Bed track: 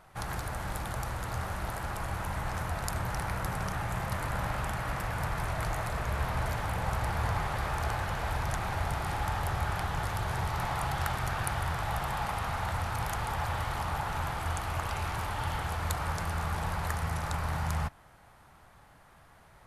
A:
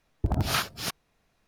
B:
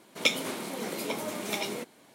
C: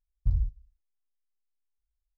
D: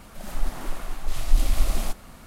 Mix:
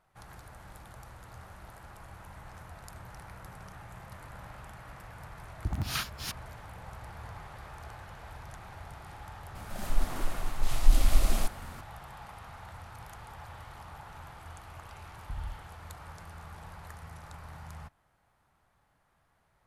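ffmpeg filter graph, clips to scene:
-filter_complex "[0:a]volume=-14dB[a];[1:a]equalizer=f=530:w=1.1:g=-14.5[b];[3:a]acompressor=threshold=-27dB:ratio=6:attack=3.2:release=140:knee=1:detection=peak[c];[b]atrim=end=1.47,asetpts=PTS-STARTPTS,volume=-5dB,afade=t=in:d=0.004:c=hsin,afade=t=out:st=1.466:d=0.004:c=hsin,adelay=238581S[d];[4:a]atrim=end=2.26,asetpts=PTS-STARTPTS,volume=-1.5dB,afade=t=in:d=0.004:c=hsin,afade=t=out:st=2.256:d=0.004:c=hsin,adelay=9550[e];[c]atrim=end=2.17,asetpts=PTS-STARTPTS,volume=-6dB,afade=t=in:d=0.004:c=hsin,afade=t=out:st=2.166:d=0.004:c=hsin,adelay=15040[f];[a][d][e][f]amix=inputs=4:normalize=0"

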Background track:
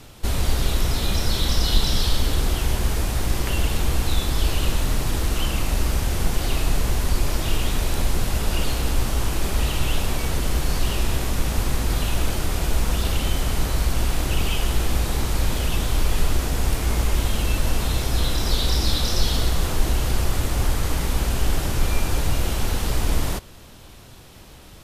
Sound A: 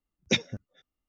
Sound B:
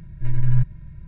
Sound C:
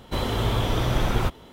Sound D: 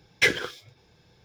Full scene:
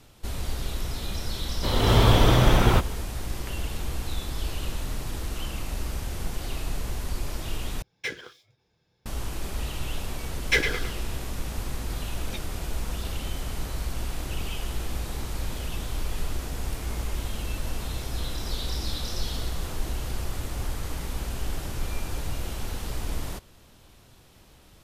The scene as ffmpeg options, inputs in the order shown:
-filter_complex "[4:a]asplit=2[a][b];[0:a]volume=-9.5dB[c];[3:a]dynaudnorm=f=200:g=3:m=10.5dB[d];[b]asplit=2[e][f];[f]adelay=106,lowpass=f=4.6k:p=1,volume=-6dB,asplit=2[g][h];[h]adelay=106,lowpass=f=4.6k:p=1,volume=0.41,asplit=2[i][j];[j]adelay=106,lowpass=f=4.6k:p=1,volume=0.41,asplit=2[k][l];[l]adelay=106,lowpass=f=4.6k:p=1,volume=0.41,asplit=2[m][n];[n]adelay=106,lowpass=f=4.6k:p=1,volume=0.41[o];[e][g][i][k][m][o]amix=inputs=6:normalize=0[p];[c]asplit=2[q][r];[q]atrim=end=7.824[s];[a]atrim=end=1.24,asetpts=PTS-STARTPTS,volume=-12dB[t];[r]atrim=start=9.056[u];[d]atrim=end=1.52,asetpts=PTS-STARTPTS,volume=-3dB,afade=t=in:d=0.004:c=hsin,afade=t=out:st=1.516:d=0.004:c=hsin,adelay=1510[v];[p]atrim=end=1.24,asetpts=PTS-STARTPTS,volume=-2dB,afade=t=in:d=0.004:c=hsin,afade=t=out:st=1.236:d=0.004:c=hsin,adelay=10300[w];[1:a]atrim=end=1.08,asetpts=PTS-STARTPTS,volume=-15.5dB,afade=t=in:d=0.004:c=hsin,afade=t=out:st=1.076:d=0.004:c=hsin,adelay=12010[x];[s][t]acrossfade=d=0.004:c1=hsin:c2=hsin[y];[y][u]acrossfade=d=0.004:c1=hsin:c2=hsin[z];[z][v][w][x]amix=inputs=4:normalize=0"

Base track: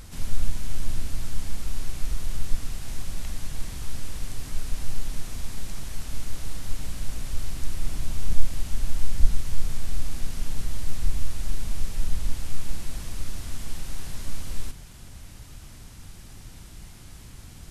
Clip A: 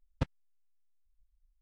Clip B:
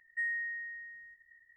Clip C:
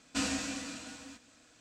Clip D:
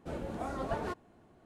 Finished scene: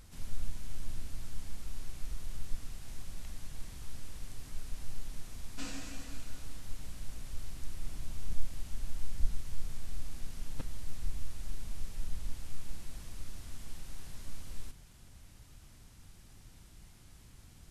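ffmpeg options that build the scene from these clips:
-filter_complex "[0:a]volume=-11.5dB[a];[3:a]atrim=end=1.6,asetpts=PTS-STARTPTS,volume=-11dB,afade=t=in:d=0.004:c=hsin,afade=t=out:st=1.596:d=0.004:c=hsin,adelay=5430[b];[1:a]atrim=end=1.61,asetpts=PTS-STARTPTS,volume=-11.5dB,afade=t=in:d=0.004:c=hsin,afade=t=out:st=1.606:d=0.004:c=hsin,adelay=10380[c];[a][b][c]amix=inputs=3:normalize=0"

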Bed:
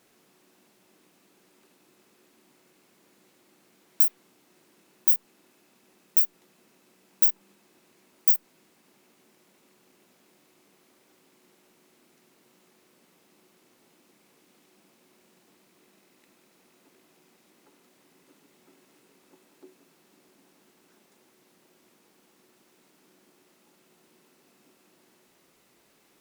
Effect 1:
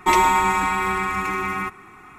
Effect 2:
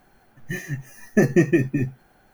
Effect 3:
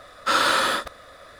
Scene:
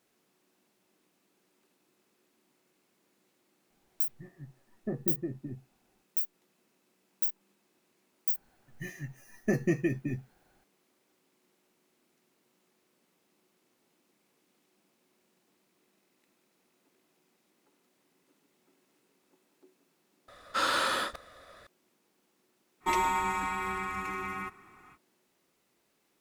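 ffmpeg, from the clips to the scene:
-filter_complex "[2:a]asplit=2[a][b];[0:a]volume=-10dB[c];[a]lowpass=f=1.3k:w=0.5412,lowpass=f=1.3k:w=1.3066[d];[3:a]acontrast=56[e];[d]atrim=end=2.33,asetpts=PTS-STARTPTS,volume=-17.5dB,afade=t=in:d=0.004:c=hsin,afade=t=out:st=2.326:d=0.004:c=hsin,adelay=3700[f];[b]atrim=end=2.33,asetpts=PTS-STARTPTS,volume=-11dB,afade=t=in:d=0.004:c=hsin,afade=t=out:st=2.326:d=0.004:c=hsin,adelay=8310[g];[e]atrim=end=1.39,asetpts=PTS-STARTPTS,volume=-14dB,afade=t=in:d=0.004:c=hsin,afade=t=out:st=1.386:d=0.004:c=hsin,adelay=20280[h];[1:a]atrim=end=2.18,asetpts=PTS-STARTPTS,volume=-11.5dB,afade=t=in:d=0.05,afade=t=out:st=2.13:d=0.05,adelay=22800[i];[c][f][g][h][i]amix=inputs=5:normalize=0"

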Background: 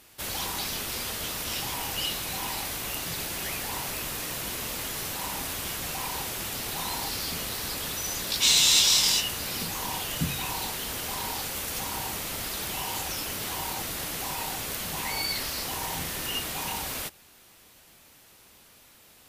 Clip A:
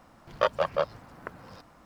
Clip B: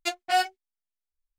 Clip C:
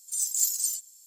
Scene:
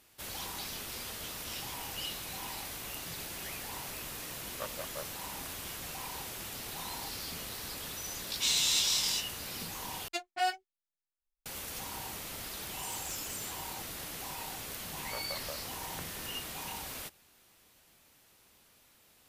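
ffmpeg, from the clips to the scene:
-filter_complex "[1:a]asplit=2[a][b];[0:a]volume=-8.5dB[c];[3:a]acompressor=threshold=-37dB:ratio=4:attack=0.17:release=79:knee=1:detection=peak[d];[b]acompressor=threshold=-32dB:ratio=6:attack=3.2:release=140:knee=1:detection=peak[e];[c]asplit=2[f][g];[f]atrim=end=10.084[h];[2:a]atrim=end=1.38,asetpts=PTS-STARTPTS,volume=-7.5dB[i];[g]atrim=start=11.456[j];[a]atrim=end=1.85,asetpts=PTS-STARTPTS,volume=-17dB,afade=t=in:d=0.004:c=hsin,afade=t=out:st=1.846:d=0.004:c=hsin,adelay=4190[k];[d]atrim=end=1.06,asetpts=PTS-STARTPTS,volume=-3dB,afade=t=in:d=0.004:c=hsin,afade=t=out:st=1.056:d=0.004:c=hsin,adelay=12710[l];[e]atrim=end=1.85,asetpts=PTS-STARTPTS,volume=-7dB,afade=t=in:d=0.004:c=hsin,afade=t=out:st=1.846:d=0.004:c=hsin,adelay=14720[m];[h][i]acrossfade=d=0.004:c1=hsin:c2=hsin[n];[n][j]acrossfade=d=0.004:c1=hsin:c2=hsin[o];[o][k][l][m]amix=inputs=4:normalize=0"

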